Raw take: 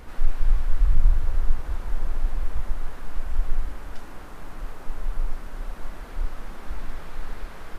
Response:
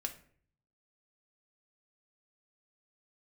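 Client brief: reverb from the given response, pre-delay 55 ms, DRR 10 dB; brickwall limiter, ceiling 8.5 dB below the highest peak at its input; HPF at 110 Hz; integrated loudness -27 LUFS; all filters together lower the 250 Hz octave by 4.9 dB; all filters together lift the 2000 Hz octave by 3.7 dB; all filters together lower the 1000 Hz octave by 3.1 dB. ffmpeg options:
-filter_complex "[0:a]highpass=110,equalizer=f=250:t=o:g=-6,equalizer=f=1k:t=o:g=-6,equalizer=f=2k:t=o:g=7,alimiter=level_in=10dB:limit=-24dB:level=0:latency=1,volume=-10dB,asplit=2[a][b];[1:a]atrim=start_sample=2205,adelay=55[c];[b][c]afir=irnorm=-1:irlink=0,volume=-9.5dB[d];[a][d]amix=inputs=2:normalize=0,volume=17dB"

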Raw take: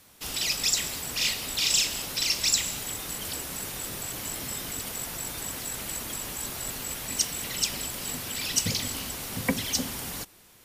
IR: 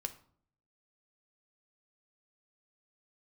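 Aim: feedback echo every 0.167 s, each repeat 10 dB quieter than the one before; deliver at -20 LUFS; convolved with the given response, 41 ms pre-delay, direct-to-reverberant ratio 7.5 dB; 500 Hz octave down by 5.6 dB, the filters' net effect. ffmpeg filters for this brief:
-filter_complex "[0:a]equalizer=f=500:t=o:g=-7,aecho=1:1:167|334|501|668:0.316|0.101|0.0324|0.0104,asplit=2[a][b];[1:a]atrim=start_sample=2205,adelay=41[c];[b][c]afir=irnorm=-1:irlink=0,volume=-6.5dB[d];[a][d]amix=inputs=2:normalize=0,volume=7.5dB"

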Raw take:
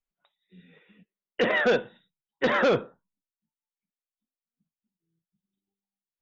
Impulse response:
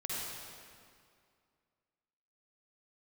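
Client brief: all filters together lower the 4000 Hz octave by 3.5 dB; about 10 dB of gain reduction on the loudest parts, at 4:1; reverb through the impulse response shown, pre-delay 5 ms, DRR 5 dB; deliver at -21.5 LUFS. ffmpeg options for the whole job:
-filter_complex "[0:a]equalizer=f=4k:t=o:g=-5,acompressor=threshold=-31dB:ratio=4,asplit=2[a][b];[1:a]atrim=start_sample=2205,adelay=5[c];[b][c]afir=irnorm=-1:irlink=0,volume=-8dB[d];[a][d]amix=inputs=2:normalize=0,volume=13dB"

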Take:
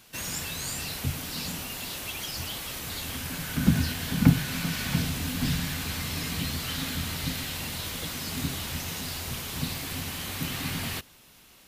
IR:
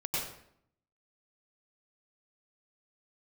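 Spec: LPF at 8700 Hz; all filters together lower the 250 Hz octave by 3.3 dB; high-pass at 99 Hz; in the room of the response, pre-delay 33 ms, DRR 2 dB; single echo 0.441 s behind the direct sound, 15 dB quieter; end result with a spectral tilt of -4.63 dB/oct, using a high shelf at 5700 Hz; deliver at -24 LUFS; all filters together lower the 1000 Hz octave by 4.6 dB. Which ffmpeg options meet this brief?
-filter_complex "[0:a]highpass=99,lowpass=8.7k,equalizer=f=250:t=o:g=-4,equalizer=f=1k:t=o:g=-5.5,highshelf=f=5.7k:g=-8.5,aecho=1:1:441:0.178,asplit=2[a][b];[1:a]atrim=start_sample=2205,adelay=33[c];[b][c]afir=irnorm=-1:irlink=0,volume=-7.5dB[d];[a][d]amix=inputs=2:normalize=0,volume=7dB"

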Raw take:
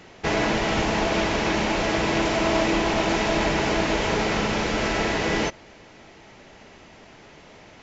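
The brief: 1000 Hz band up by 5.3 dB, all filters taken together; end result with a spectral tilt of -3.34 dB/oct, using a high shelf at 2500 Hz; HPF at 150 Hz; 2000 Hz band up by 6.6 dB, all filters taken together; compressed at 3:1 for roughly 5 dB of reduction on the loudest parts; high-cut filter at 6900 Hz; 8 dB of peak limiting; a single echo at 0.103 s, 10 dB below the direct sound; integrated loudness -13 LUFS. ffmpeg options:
-af "highpass=150,lowpass=6.9k,equalizer=f=1k:t=o:g=5,equalizer=f=2k:t=o:g=5,highshelf=f=2.5k:g=3.5,acompressor=threshold=-22dB:ratio=3,alimiter=limit=-18.5dB:level=0:latency=1,aecho=1:1:103:0.316,volume=13.5dB"

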